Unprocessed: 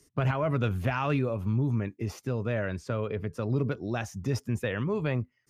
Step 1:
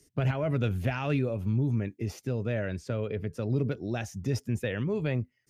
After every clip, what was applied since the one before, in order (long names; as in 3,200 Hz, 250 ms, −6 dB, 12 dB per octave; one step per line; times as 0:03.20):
parametric band 1,100 Hz −9.5 dB 0.71 octaves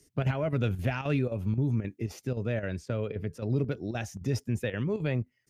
square-wave tremolo 3.8 Hz, depth 60%, duty 85%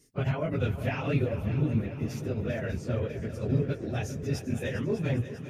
random phases in long frames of 50 ms
echo machine with several playback heads 199 ms, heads second and third, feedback 62%, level −13 dB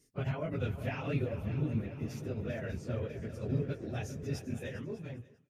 fade-out on the ending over 1.09 s
level −6 dB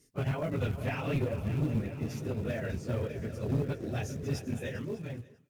in parallel at −5.5 dB: floating-point word with a short mantissa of 2 bits
on the sum: asymmetric clip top −27.5 dBFS